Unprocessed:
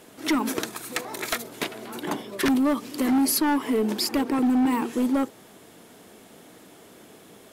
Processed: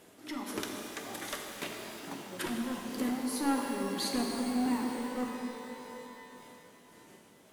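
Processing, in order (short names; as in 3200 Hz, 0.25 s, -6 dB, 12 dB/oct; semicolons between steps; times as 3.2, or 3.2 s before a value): repeated pitch sweeps -2.5 st, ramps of 1.462 s; tremolo 1.7 Hz, depth 62%; shimmer reverb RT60 3.1 s, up +12 st, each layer -8 dB, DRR 1 dB; gain -8 dB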